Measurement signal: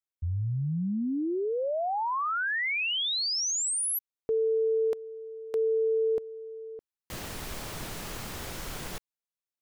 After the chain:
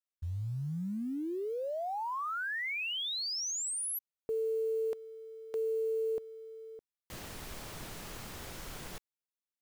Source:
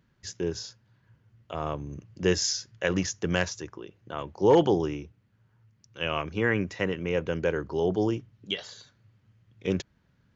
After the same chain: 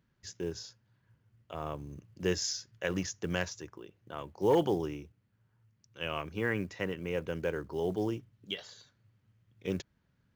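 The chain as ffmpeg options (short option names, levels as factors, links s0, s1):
-af "acrusher=bits=8:mode=log:mix=0:aa=0.000001,volume=0.473"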